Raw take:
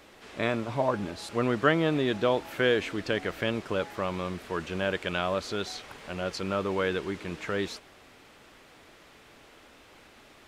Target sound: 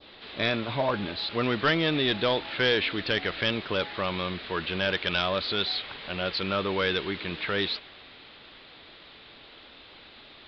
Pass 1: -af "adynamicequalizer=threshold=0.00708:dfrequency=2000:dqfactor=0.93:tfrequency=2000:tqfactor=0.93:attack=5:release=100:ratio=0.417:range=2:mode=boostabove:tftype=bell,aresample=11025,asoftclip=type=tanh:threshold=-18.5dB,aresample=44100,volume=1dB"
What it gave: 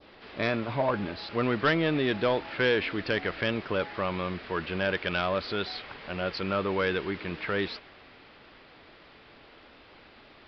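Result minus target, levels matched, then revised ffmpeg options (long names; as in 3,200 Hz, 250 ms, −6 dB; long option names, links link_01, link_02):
4,000 Hz band −6.5 dB
-af "adynamicequalizer=threshold=0.00708:dfrequency=2000:dqfactor=0.93:tfrequency=2000:tqfactor=0.93:attack=5:release=100:ratio=0.417:range=2:mode=boostabove:tftype=bell,lowpass=frequency=3800:width_type=q:width=3.9,aresample=11025,asoftclip=type=tanh:threshold=-18.5dB,aresample=44100,volume=1dB"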